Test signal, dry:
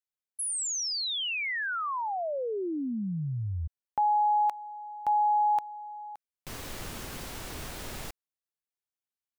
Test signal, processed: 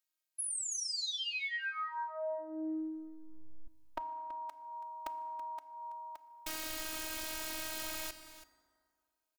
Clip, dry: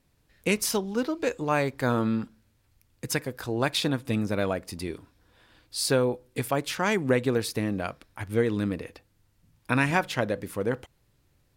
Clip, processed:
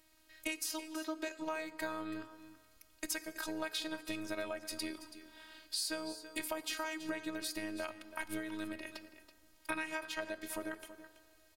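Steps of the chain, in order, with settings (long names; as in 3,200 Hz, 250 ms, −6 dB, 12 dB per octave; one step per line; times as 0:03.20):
low-shelf EQ 460 Hz −11 dB
downward compressor 6 to 1, threshold −43 dBFS
phases set to zero 316 Hz
single-tap delay 329 ms −14 dB
feedback delay network reverb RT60 2.4 s, low-frequency decay 0.8×, high-frequency decay 0.5×, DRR 12.5 dB
level +8 dB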